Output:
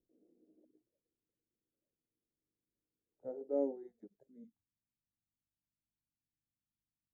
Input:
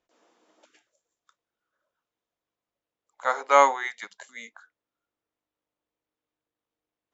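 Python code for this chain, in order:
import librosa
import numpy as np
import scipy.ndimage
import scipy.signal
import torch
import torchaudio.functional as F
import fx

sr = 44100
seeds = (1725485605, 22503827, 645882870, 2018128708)

y = fx.cheby2_lowpass(x, sr, hz=fx.steps((0.0, 1000.0), (4.43, 550.0)), order=4, stop_db=50)
y = F.gain(torch.from_numpy(y), 1.5).numpy()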